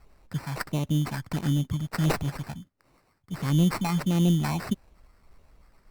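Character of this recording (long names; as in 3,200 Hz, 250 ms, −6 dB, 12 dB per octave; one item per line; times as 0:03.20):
phaser sweep stages 12, 1.5 Hz, lowest notch 410–2,300 Hz
aliases and images of a low sample rate 3,300 Hz, jitter 0%
Opus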